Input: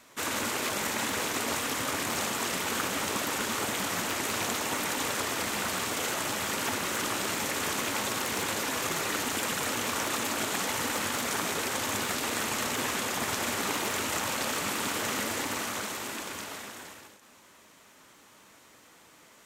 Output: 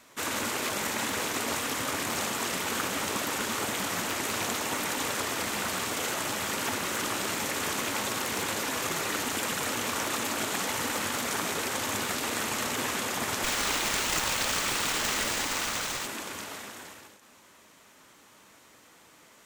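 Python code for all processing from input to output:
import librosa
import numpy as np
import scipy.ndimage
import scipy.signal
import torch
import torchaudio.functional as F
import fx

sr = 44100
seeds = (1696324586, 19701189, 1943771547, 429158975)

y = fx.chain(x, sr, fx.tilt_eq(slope=2.5),
    fx.running_max(window=3), at=(13.44, 16.06))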